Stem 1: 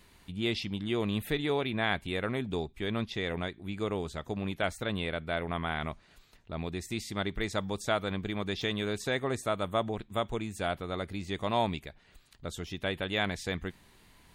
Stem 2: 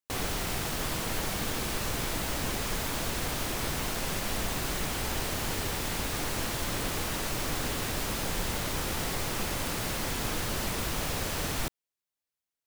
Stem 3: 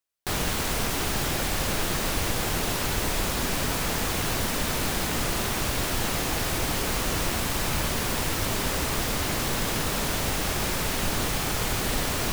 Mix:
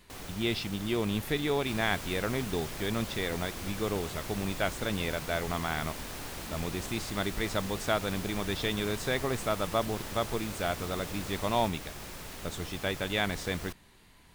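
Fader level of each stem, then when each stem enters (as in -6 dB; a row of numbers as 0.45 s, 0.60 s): +0.5 dB, -11.5 dB, -16.0 dB; 0.00 s, 0.00 s, 1.40 s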